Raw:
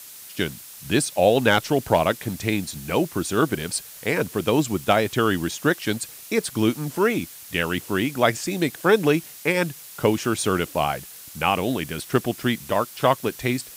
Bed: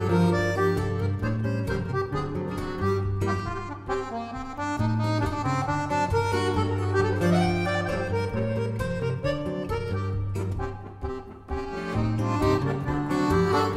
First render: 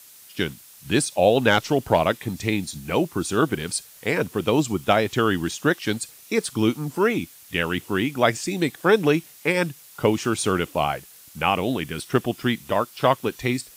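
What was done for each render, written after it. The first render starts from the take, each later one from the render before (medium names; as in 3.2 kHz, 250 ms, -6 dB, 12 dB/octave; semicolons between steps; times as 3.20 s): noise print and reduce 6 dB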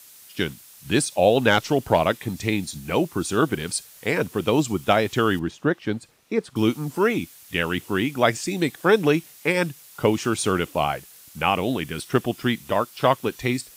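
5.39–6.56 s: low-pass 1.1 kHz 6 dB/octave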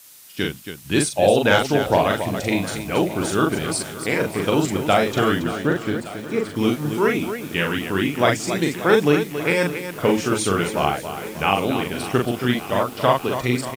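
loudspeakers at several distances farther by 14 m -3 dB, 95 m -9 dB; bit-crushed delay 584 ms, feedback 80%, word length 6-bit, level -15 dB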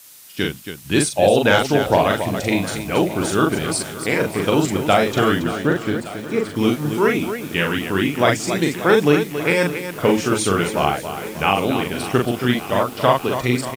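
trim +2 dB; peak limiter -3 dBFS, peak gain reduction 2.5 dB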